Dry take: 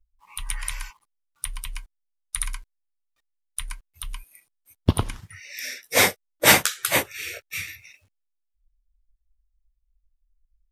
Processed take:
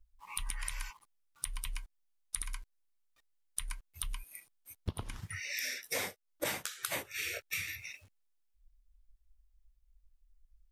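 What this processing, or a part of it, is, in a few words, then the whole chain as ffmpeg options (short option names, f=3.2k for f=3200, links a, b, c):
serial compression, leveller first: -af "acompressor=threshold=-26dB:ratio=2,acompressor=threshold=-37dB:ratio=6,volume=2.5dB"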